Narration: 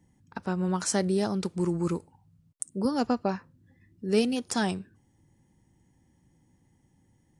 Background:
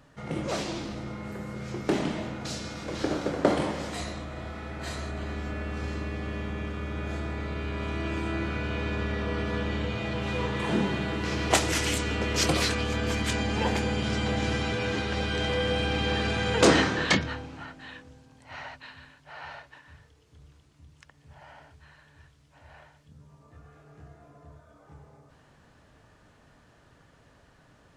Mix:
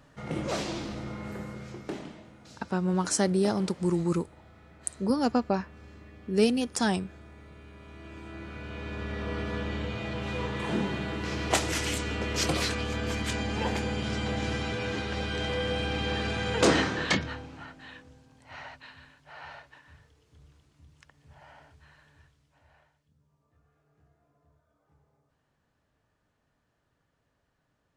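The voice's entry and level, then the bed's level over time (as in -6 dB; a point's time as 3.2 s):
2.25 s, +1.0 dB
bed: 1.4 s -0.5 dB
2.26 s -17 dB
7.82 s -17 dB
9.3 s -3 dB
22.08 s -3 dB
23.17 s -17 dB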